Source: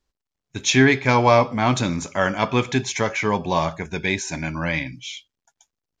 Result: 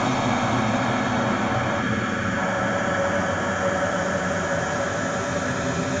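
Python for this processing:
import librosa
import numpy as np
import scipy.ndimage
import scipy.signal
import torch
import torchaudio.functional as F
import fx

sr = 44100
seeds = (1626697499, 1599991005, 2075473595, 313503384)

y = fx.block_reorder(x, sr, ms=96.0, group=5)
y = fx.paulstretch(y, sr, seeds[0], factor=11.0, window_s=1.0, from_s=1.77)
y = fx.spec_box(y, sr, start_s=1.81, length_s=0.56, low_hz=540.0, high_hz=1100.0, gain_db=-8)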